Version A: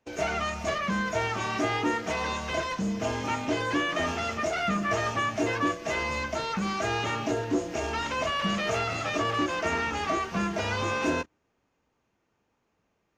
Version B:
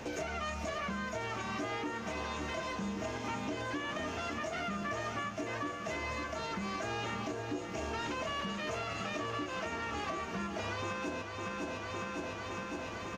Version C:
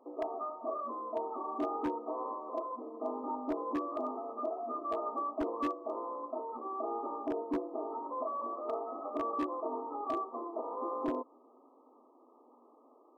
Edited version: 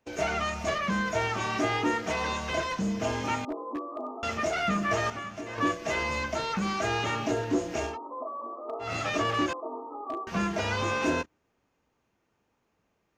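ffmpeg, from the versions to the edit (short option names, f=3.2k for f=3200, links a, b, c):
-filter_complex "[2:a]asplit=3[a][b][c];[0:a]asplit=5[d][e][f][g][h];[d]atrim=end=3.452[i];[a]atrim=start=3.448:end=4.232[j];[e]atrim=start=4.228:end=5.102[k];[1:a]atrim=start=5.098:end=5.582[l];[f]atrim=start=5.578:end=7.98[m];[b]atrim=start=7.82:end=8.95[n];[g]atrim=start=8.79:end=9.532[o];[c]atrim=start=9.528:end=10.272[p];[h]atrim=start=10.268[q];[i][j]acrossfade=d=0.004:c1=hsin:c2=hsin[r];[r][k]acrossfade=d=0.004:c1=hsin:c2=hsin[s];[s][l]acrossfade=d=0.004:c1=hsin:c2=hsin[t];[t][m]acrossfade=d=0.004:c1=hsin:c2=hsin[u];[u][n]acrossfade=d=0.16:c1=tri:c2=tri[v];[v][o]acrossfade=d=0.16:c1=tri:c2=tri[w];[w][p]acrossfade=d=0.004:c1=hsin:c2=hsin[x];[x][q]acrossfade=d=0.004:c1=hsin:c2=hsin"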